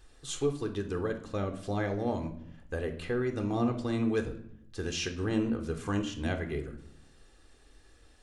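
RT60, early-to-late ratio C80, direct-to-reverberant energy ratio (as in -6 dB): 0.70 s, 14.5 dB, 7.0 dB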